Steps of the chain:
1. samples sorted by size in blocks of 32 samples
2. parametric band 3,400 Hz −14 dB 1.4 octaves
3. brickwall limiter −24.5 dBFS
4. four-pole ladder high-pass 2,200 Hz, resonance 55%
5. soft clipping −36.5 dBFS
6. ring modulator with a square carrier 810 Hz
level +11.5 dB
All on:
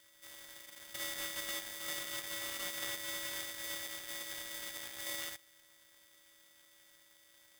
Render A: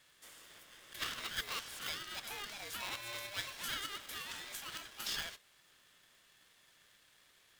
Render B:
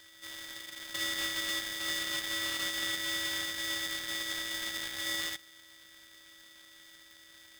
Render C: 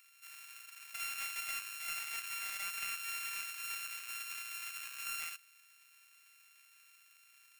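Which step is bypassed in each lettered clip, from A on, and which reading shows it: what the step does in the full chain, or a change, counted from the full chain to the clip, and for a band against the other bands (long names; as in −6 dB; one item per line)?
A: 1, 1 kHz band +6.0 dB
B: 2, 500 Hz band −5.0 dB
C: 6, 1 kHz band +5.0 dB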